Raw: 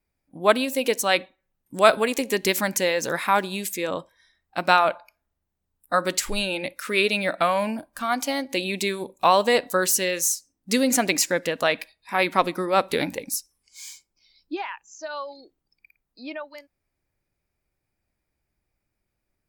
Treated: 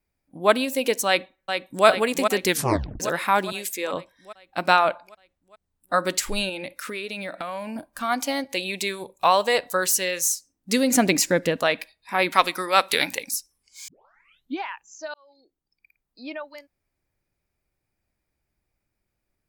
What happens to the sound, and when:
1.07–1.86 echo throw 0.41 s, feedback 65%, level -6 dB
2.47 tape stop 0.53 s
3.52–3.93 HPF 350 Hz
4.75–5.98 bell 15000 Hz -10.5 dB 0.35 oct
6.49–7.76 compressor 5:1, threshold -29 dBFS
8.44–10.3 bell 260 Hz -9.5 dB 1 oct
10.95–11.59 low shelf 320 Hz +10 dB
12.32–13.31 tilt shelf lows -9 dB, about 760 Hz
13.88 tape start 0.73 s
15.14–16.27 fade in linear

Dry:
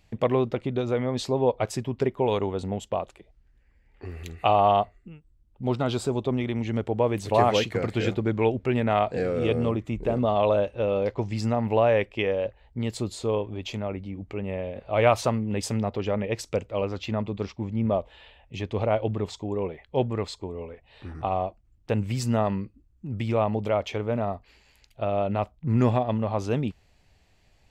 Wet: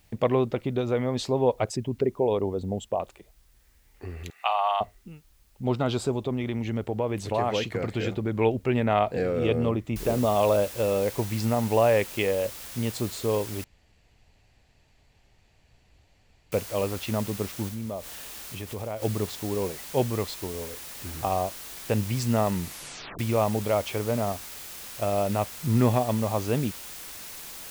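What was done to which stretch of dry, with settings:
1.64–3 formant sharpening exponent 1.5
4.3–4.81 HPF 830 Hz 24 dB/oct
6.11–8.35 compressor 2:1, threshold -25 dBFS
9.96 noise floor step -67 dB -41 dB
13.64–16.52 room tone
17.68–19.02 compressor 2.5:1, threshold -34 dBFS
22.54 tape stop 0.65 s

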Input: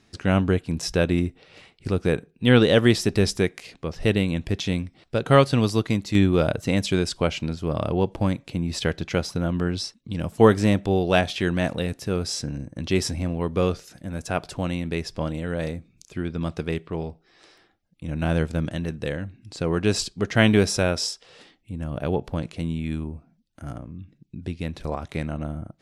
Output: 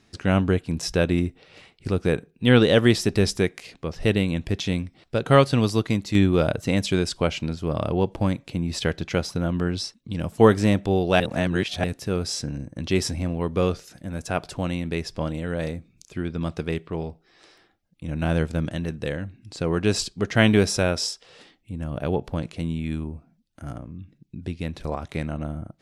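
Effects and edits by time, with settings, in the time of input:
11.2–11.84 reverse

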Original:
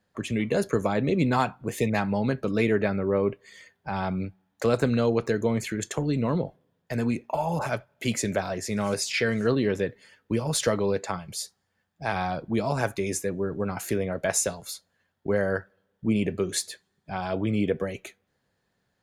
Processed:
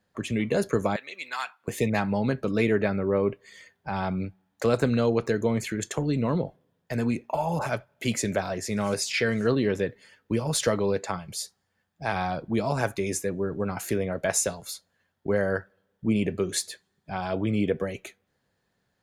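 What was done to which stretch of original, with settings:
0.96–1.68 Chebyshev high-pass 1700 Hz

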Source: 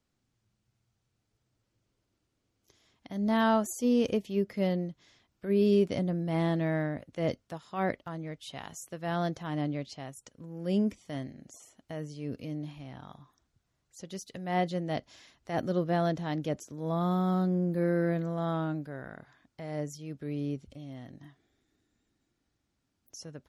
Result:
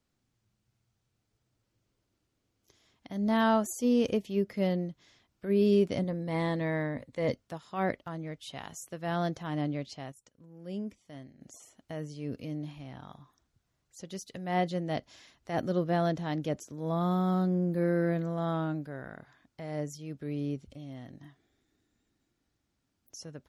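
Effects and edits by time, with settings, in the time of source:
6.03–7.33 ripple EQ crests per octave 0.99, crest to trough 7 dB
10.12–11.41 gain -9.5 dB

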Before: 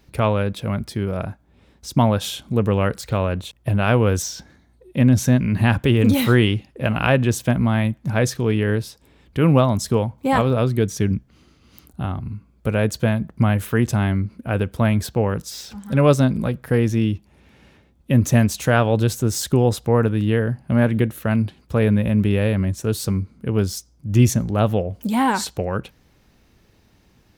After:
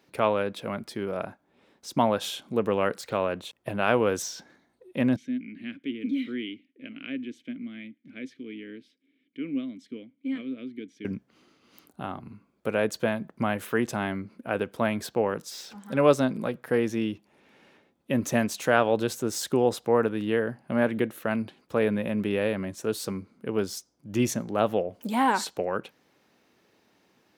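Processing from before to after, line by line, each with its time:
5.16–11.05 vowel filter i
whole clip: HPF 290 Hz 12 dB/oct; high shelf 4000 Hz -5.5 dB; gain -2.5 dB

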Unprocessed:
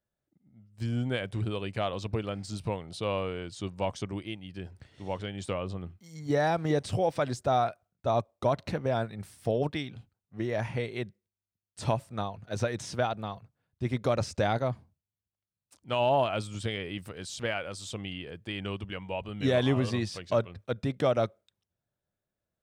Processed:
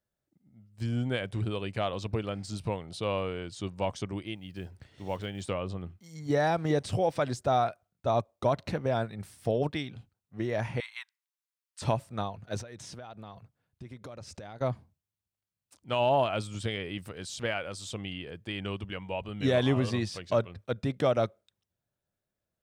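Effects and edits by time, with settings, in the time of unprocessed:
4.35–5.51 block floating point 7-bit
10.8–11.82 steep high-pass 890 Hz 72 dB/oct
12.61–14.61 compressor 8:1, threshold -41 dBFS

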